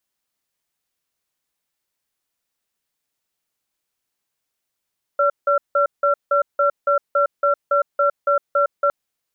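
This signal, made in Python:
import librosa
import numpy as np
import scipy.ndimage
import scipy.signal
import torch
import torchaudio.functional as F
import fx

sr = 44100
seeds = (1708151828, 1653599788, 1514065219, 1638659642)

y = fx.cadence(sr, length_s=3.71, low_hz=572.0, high_hz=1360.0, on_s=0.11, off_s=0.17, level_db=-16.5)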